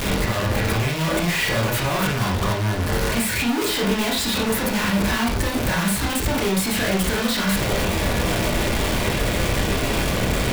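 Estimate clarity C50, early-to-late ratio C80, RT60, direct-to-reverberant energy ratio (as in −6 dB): 6.0 dB, 11.5 dB, non-exponential decay, −2.5 dB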